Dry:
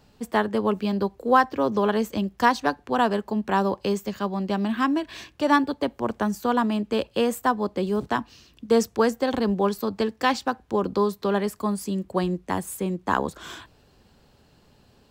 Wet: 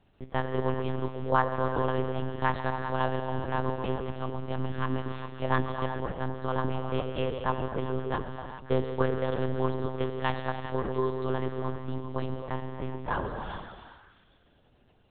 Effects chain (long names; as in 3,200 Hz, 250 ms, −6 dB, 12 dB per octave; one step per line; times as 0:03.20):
on a send: echo through a band-pass that steps 135 ms, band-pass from 390 Hz, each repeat 0.7 octaves, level −5.5 dB
on the sum: reverb whose tail is shaped and stops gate 440 ms flat, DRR 4.5 dB
one-pitch LPC vocoder at 8 kHz 130 Hz
level −7.5 dB